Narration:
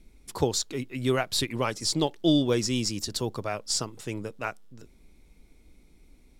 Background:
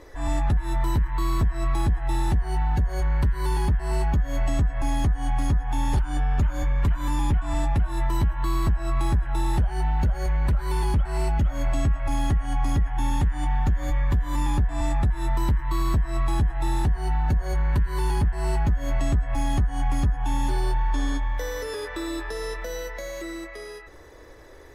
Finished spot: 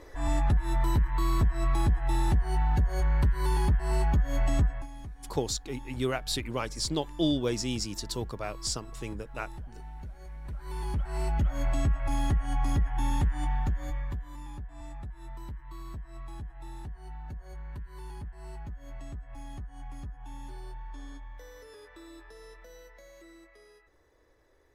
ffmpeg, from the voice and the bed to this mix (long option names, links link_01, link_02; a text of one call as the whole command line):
ffmpeg -i stem1.wav -i stem2.wav -filter_complex "[0:a]adelay=4950,volume=-4.5dB[link_01];[1:a]volume=13.5dB,afade=type=out:start_time=4.64:duration=0.23:silence=0.133352,afade=type=in:start_time=10.42:duration=1.07:silence=0.158489,afade=type=out:start_time=13.34:duration=1.02:silence=0.188365[link_02];[link_01][link_02]amix=inputs=2:normalize=0" out.wav